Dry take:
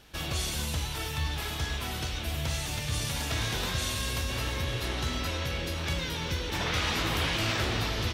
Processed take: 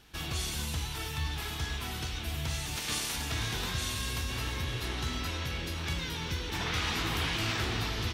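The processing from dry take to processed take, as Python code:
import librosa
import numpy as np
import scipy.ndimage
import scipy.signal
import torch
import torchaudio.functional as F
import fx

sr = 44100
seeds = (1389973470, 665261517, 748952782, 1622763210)

y = fx.spec_clip(x, sr, under_db=20, at=(2.75, 3.15), fade=0.02)
y = fx.peak_eq(y, sr, hz=570.0, db=-9.0, octaves=0.31)
y = F.gain(torch.from_numpy(y), -2.5).numpy()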